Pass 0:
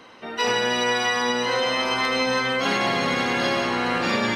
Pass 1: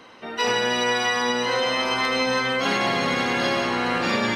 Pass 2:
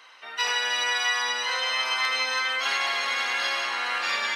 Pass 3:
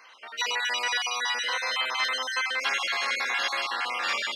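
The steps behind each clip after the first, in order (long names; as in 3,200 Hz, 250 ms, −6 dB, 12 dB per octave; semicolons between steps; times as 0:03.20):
no processing that can be heard
high-pass filter 1,200 Hz 12 dB per octave
time-frequency cells dropped at random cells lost 33%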